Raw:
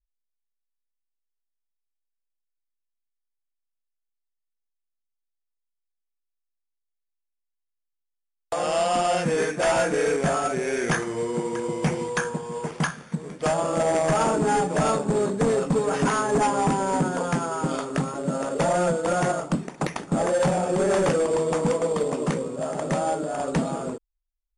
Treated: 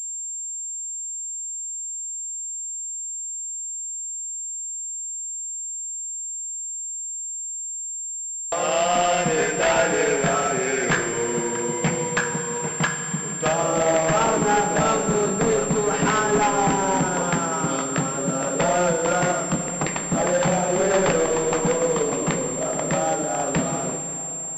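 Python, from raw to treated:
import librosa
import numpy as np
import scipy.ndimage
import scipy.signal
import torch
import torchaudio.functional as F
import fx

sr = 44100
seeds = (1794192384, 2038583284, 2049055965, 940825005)

y = fx.high_shelf(x, sr, hz=2100.0, db=11.0)
y = fx.rev_schroeder(y, sr, rt60_s=3.4, comb_ms=30, drr_db=6.5)
y = fx.pwm(y, sr, carrier_hz=7400.0)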